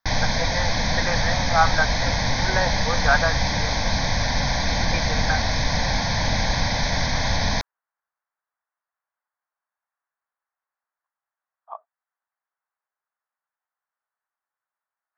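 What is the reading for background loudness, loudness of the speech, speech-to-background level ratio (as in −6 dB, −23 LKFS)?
−23.0 LKFS, −26.0 LKFS, −3.0 dB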